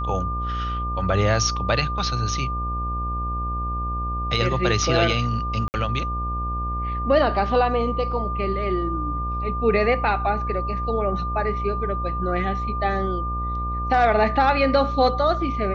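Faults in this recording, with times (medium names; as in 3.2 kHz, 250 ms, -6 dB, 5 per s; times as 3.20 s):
buzz 60 Hz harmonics 17 -28 dBFS
whine 1.2 kHz -27 dBFS
5.68–5.74 s: dropout 59 ms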